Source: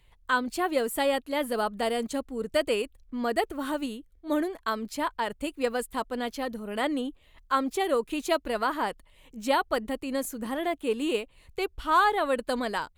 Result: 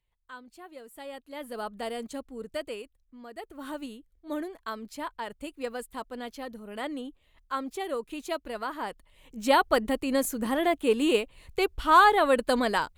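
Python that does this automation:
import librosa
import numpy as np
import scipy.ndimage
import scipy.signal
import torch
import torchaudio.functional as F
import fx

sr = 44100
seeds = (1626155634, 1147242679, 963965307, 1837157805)

y = fx.gain(x, sr, db=fx.line((0.84, -19.5), (1.68, -6.5), (2.38, -6.5), (3.31, -17.5), (3.67, -6.5), (8.74, -6.5), (9.61, 4.0)))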